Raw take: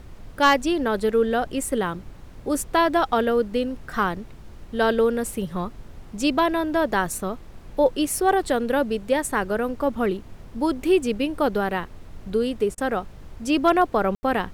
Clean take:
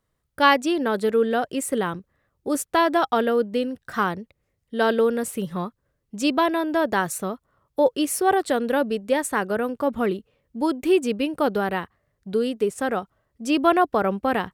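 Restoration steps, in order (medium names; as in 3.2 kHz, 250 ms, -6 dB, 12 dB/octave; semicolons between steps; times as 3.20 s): clip repair -9 dBFS; room tone fill 14.15–14.23 s; interpolate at 12.75 s, 27 ms; noise print and reduce 30 dB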